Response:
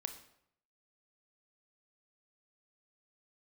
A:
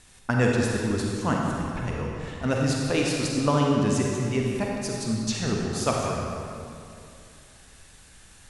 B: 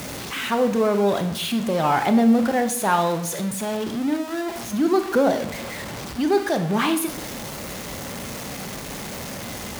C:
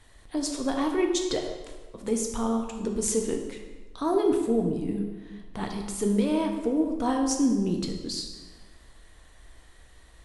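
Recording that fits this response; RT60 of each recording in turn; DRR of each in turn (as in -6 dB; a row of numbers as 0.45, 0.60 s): B; 2.6, 0.70, 1.3 s; -1.5, 7.5, 2.0 dB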